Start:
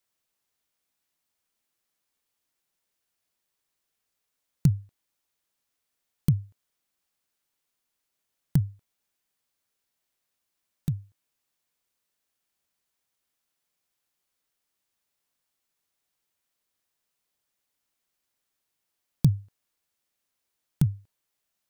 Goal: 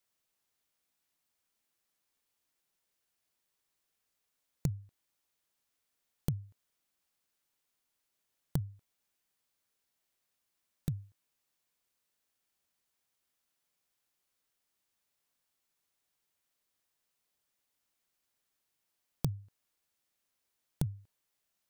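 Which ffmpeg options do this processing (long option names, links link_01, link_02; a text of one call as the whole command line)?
ffmpeg -i in.wav -af "acompressor=threshold=-29dB:ratio=5,volume=-1.5dB" out.wav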